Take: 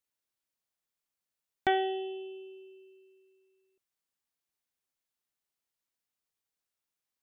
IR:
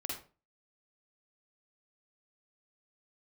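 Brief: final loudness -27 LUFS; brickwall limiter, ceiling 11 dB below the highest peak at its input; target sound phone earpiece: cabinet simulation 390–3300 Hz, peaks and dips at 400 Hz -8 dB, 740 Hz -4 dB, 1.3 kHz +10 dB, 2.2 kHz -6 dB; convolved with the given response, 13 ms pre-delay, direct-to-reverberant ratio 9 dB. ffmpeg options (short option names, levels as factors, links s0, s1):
-filter_complex "[0:a]alimiter=level_in=1.41:limit=0.0631:level=0:latency=1,volume=0.708,asplit=2[s0][s1];[1:a]atrim=start_sample=2205,adelay=13[s2];[s1][s2]afir=irnorm=-1:irlink=0,volume=0.316[s3];[s0][s3]amix=inputs=2:normalize=0,highpass=390,equalizer=f=400:t=q:w=4:g=-8,equalizer=f=740:t=q:w=4:g=-4,equalizer=f=1300:t=q:w=4:g=10,equalizer=f=2200:t=q:w=4:g=-6,lowpass=f=3300:w=0.5412,lowpass=f=3300:w=1.3066,volume=5.31"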